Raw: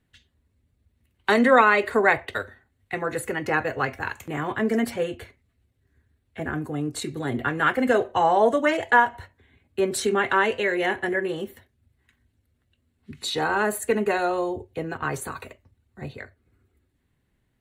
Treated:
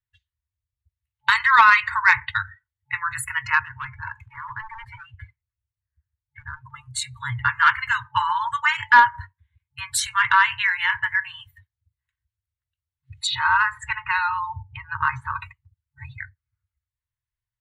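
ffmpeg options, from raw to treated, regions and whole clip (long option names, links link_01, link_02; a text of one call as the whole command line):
ffmpeg -i in.wav -filter_complex "[0:a]asettb=1/sr,asplit=3[link_01][link_02][link_03];[link_01]atrim=end=3.594[link_04];[link_02]atrim=start=3.59:end=6.74,asetpts=PTS-STARTPTS,afade=type=in:duration=0.004:curve=qsin,afade=type=out:start_time=3.146:duration=0.004:curve=qsin,lowpass=frequency=1900:poles=1,volume=25dB,asoftclip=hard,volume=-25dB,acompressor=threshold=-36dB:ratio=2:attack=3.2:release=140:knee=1:detection=peak[link_05];[link_03]atrim=start=6.736[link_06];[link_04][link_05]acrossfade=duration=0.004:curve1=hsin:curve2=qsin[link_07];[link_07][link_06]acrossfade=duration=0.004:curve1=qsin:curve2=hsin,asettb=1/sr,asplit=3[link_08][link_09][link_10];[link_08]atrim=end=13.274[link_11];[link_09]atrim=start=13.27:end=15.41,asetpts=PTS-STARTPTS,afade=type=in:duration=0.004:curve=qsin,afade=type=out:start_time=2.136:duration=0.004:curve=qsin,lowpass=3800,equalizer=frequency=330:width=1:gain=15,acompressor=mode=upward:threshold=-28dB:ratio=2.5:attack=3.2:release=140:knee=2.83:detection=peak[link_12];[link_10]atrim=start=15.406[link_13];[link_11][link_12]acrossfade=duration=0.004:curve1=hsin:curve2=qsin[link_14];[link_14][link_13]acrossfade=duration=0.004:curve1=qsin:curve2=hsin,afftdn=noise_reduction=25:noise_floor=-41,afftfilt=real='re*(1-between(b*sr/4096,130,870))':imag='im*(1-between(b*sr/4096,130,870))':win_size=4096:overlap=0.75,acontrast=64" out.wav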